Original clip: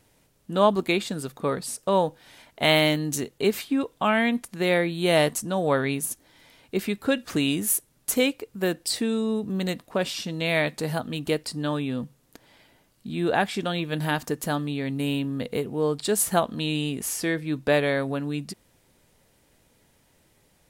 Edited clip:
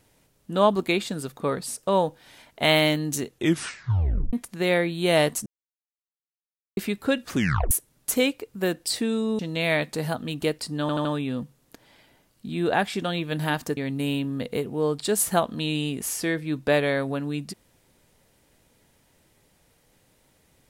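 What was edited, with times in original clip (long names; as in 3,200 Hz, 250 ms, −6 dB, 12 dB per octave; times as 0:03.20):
0:03.29: tape stop 1.04 s
0:05.46–0:06.77: silence
0:07.33: tape stop 0.38 s
0:09.39–0:10.24: remove
0:11.66: stutter 0.08 s, 4 plays
0:14.38–0:14.77: remove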